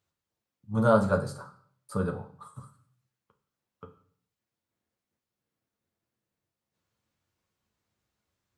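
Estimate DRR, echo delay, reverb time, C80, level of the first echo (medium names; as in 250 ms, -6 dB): 3.5 dB, no echo, 0.55 s, 15.5 dB, no echo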